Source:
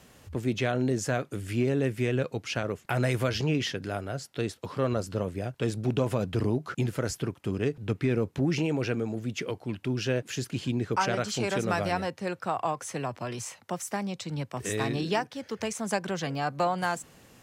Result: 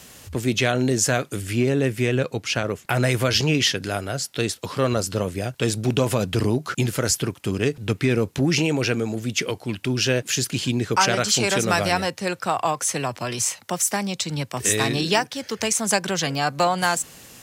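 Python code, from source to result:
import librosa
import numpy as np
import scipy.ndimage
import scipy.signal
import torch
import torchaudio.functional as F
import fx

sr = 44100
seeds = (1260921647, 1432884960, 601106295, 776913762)

y = fx.high_shelf(x, sr, hz=2600.0, db=fx.steps((0.0, 11.0), (1.41, 6.0), (3.29, 11.5)))
y = F.gain(torch.from_numpy(y), 5.5).numpy()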